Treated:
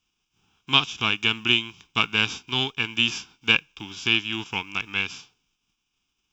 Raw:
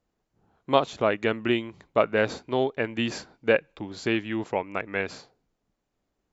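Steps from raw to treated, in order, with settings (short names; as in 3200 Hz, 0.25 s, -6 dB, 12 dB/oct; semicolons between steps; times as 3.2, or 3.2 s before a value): spectral whitening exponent 0.6; band shelf 3400 Hz +12 dB; fixed phaser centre 2900 Hz, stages 8; gain -1 dB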